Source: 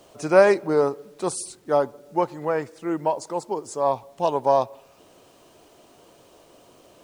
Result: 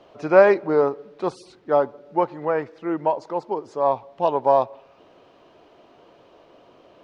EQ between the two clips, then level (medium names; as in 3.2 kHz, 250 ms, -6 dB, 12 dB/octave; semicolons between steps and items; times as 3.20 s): distance through air 270 m; bass shelf 220 Hz -7 dB; +3.5 dB